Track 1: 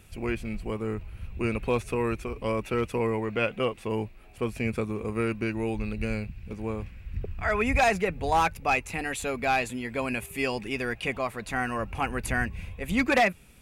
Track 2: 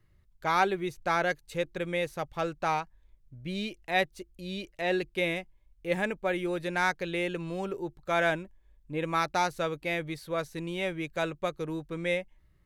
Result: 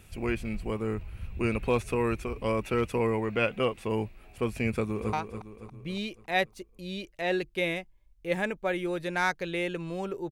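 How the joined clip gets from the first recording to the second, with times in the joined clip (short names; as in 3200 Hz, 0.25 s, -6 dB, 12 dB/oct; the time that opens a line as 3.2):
track 1
4.73–5.13 echo throw 0.28 s, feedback 50%, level -8.5 dB
5.13 switch to track 2 from 2.73 s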